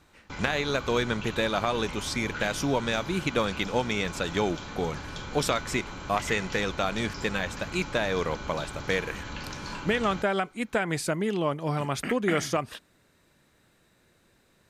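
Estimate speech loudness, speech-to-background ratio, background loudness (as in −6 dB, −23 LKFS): −29.0 LKFS, 9.5 dB, −38.5 LKFS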